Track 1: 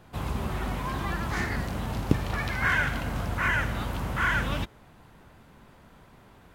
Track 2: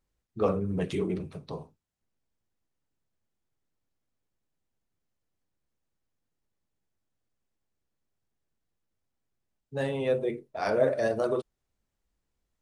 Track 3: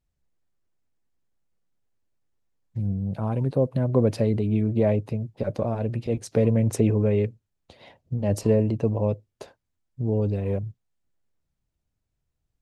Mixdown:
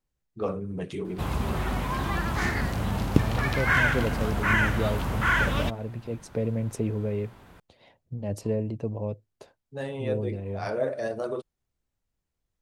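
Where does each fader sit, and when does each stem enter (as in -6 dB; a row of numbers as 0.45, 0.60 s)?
+2.5, -3.5, -7.5 dB; 1.05, 0.00, 0.00 s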